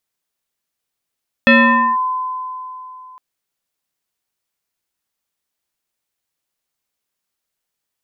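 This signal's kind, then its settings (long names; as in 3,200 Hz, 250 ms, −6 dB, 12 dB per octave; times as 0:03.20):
two-operator FM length 1.71 s, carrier 1,020 Hz, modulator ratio 0.77, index 2.3, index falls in 0.50 s linear, decay 3.18 s, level −5 dB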